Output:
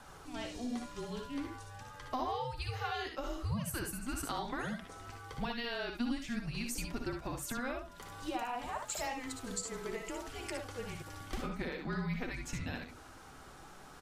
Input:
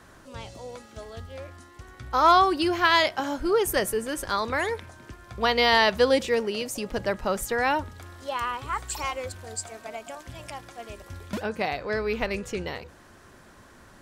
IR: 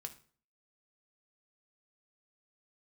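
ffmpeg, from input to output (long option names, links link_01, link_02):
-filter_complex "[0:a]highpass=frequency=180:width=0.5412,highpass=frequency=180:width=1.3066,acompressor=threshold=-34dB:ratio=10,afreqshift=-250,flanger=delay=1.1:depth=5:regen=-46:speed=0.55:shape=triangular,aecho=1:1:60|72:0.422|0.422,asplit=2[link_01][link_02];[1:a]atrim=start_sample=2205,asetrate=79380,aresample=44100[link_03];[link_02][link_03]afir=irnorm=-1:irlink=0,volume=4dB[link_04];[link_01][link_04]amix=inputs=2:normalize=0,volume=-1dB"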